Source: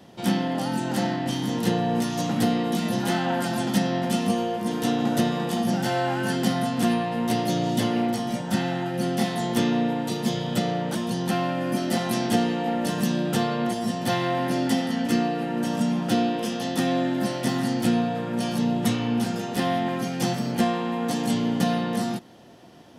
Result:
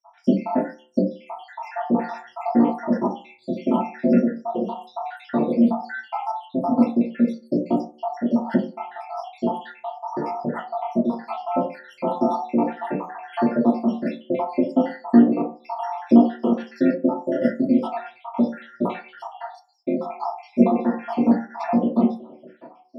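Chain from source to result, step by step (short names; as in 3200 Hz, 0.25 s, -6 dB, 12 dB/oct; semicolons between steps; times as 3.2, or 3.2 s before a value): random spectral dropouts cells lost 81%; band-pass 820 Hz, Q 0.99; reverb RT60 0.40 s, pre-delay 3 ms, DRR -6 dB; gain -1.5 dB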